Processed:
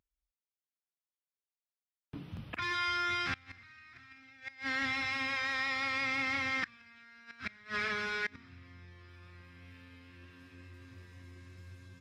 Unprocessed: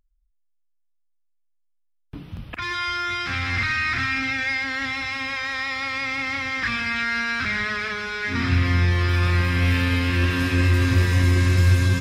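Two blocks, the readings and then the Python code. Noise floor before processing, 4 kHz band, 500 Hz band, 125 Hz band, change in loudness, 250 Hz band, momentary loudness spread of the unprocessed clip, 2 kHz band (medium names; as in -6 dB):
-67 dBFS, -11.5 dB, -14.5 dB, -30.5 dB, -12.0 dB, -19.5 dB, 7 LU, -12.0 dB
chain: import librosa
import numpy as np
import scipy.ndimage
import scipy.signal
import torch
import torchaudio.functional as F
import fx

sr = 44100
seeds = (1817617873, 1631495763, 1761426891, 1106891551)

y = scipy.signal.sosfilt(scipy.signal.butter(2, 88.0, 'highpass', fs=sr, output='sos'), x)
y = fx.high_shelf(y, sr, hz=8300.0, db=-4.0)
y = fx.gate_flip(y, sr, shuts_db=-16.0, range_db=-26)
y = y * librosa.db_to_amplitude(-6.5)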